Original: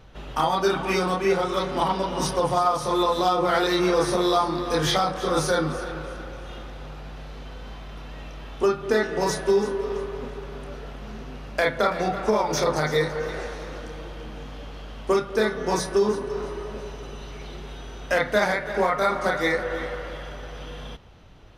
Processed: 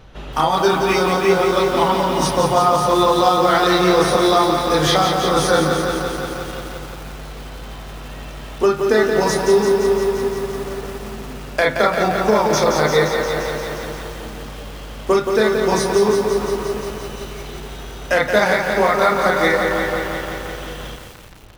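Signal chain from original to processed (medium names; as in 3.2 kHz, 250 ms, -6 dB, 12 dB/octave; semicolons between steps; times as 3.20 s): bit-crushed delay 174 ms, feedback 80%, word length 7-bit, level -6 dB; trim +5.5 dB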